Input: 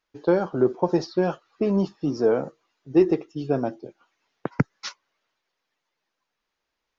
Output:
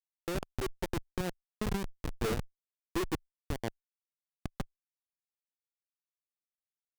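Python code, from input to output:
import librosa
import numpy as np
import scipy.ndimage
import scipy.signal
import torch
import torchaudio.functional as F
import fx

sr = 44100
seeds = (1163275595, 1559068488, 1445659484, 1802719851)

y = fx.schmitt(x, sr, flips_db=-18.5)
y = fx.cheby_harmonics(y, sr, harmonics=(8,), levels_db=(-14,), full_scale_db=-20.0)
y = F.gain(torch.from_numpy(y), -5.0).numpy()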